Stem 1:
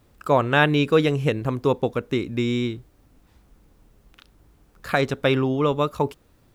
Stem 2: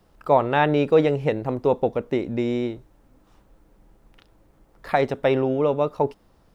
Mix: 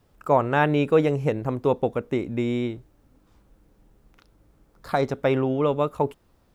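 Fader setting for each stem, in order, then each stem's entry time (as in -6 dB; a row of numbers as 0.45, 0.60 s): -7.5, -6.0 dB; 0.00, 0.00 s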